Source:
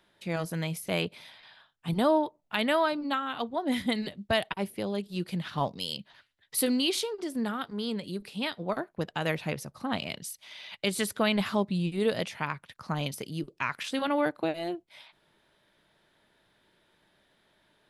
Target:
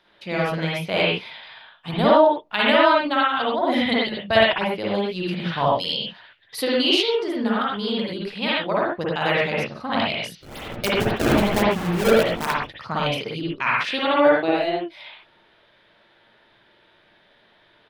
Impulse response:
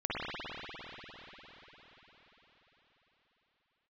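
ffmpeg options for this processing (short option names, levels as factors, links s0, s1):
-filter_complex "[0:a]firequalizer=gain_entry='entry(220,0);entry(500,5);entry(4700,7);entry(7500,-6)':delay=0.05:min_phase=1,asettb=1/sr,asplit=3[s0][s1][s2];[s0]atrim=end=10.374[s3];[s1]atrim=start=10.37:end=12.67,asetpts=PTS-STARTPTS,afade=t=in:d=0.004:c=qsin,afade=t=out:st=2.296:d=0.004:c=qsin,acrusher=samples=27:mix=1:aa=0.000001:lfo=1:lforange=43.2:lforate=3.7[s4];[s2]atrim=start=12.666[s5];[s3][s4]acrossfade=d=0.004:c1=hsin:c2=qsin[s6];[s6][s5]acrossfade=d=0.004:c1=qsin:c2=hsin[s7];[1:a]atrim=start_sample=2205,afade=t=out:st=0.19:d=0.01,atrim=end_sample=8820[s8];[s7][s8]afir=irnorm=-1:irlink=0,volume=1.19"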